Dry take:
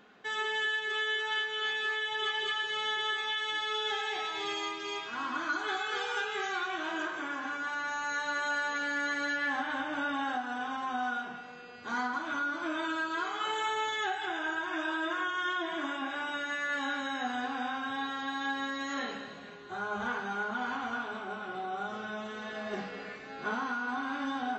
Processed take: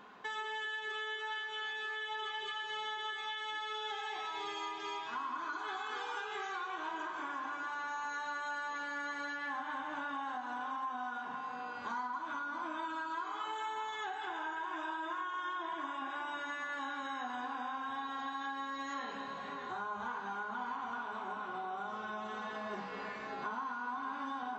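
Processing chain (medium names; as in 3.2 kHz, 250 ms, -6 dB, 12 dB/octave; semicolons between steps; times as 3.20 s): peaking EQ 1 kHz +13 dB 0.43 oct; echo whose repeats swap between lows and highs 596 ms, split 2.4 kHz, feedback 60%, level -12.5 dB; compression 4:1, threshold -39 dBFS, peak gain reduction 14.5 dB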